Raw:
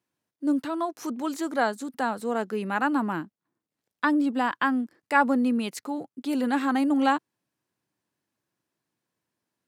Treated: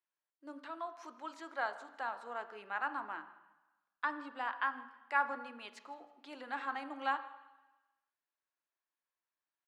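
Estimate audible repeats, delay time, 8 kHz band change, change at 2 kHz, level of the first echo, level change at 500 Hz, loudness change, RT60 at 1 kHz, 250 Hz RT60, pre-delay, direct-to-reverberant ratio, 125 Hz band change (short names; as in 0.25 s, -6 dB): 2, 0.16 s, under -20 dB, -9.0 dB, -22.5 dB, -16.0 dB, -13.0 dB, 1.1 s, 1.1 s, 3 ms, 9.5 dB, under -30 dB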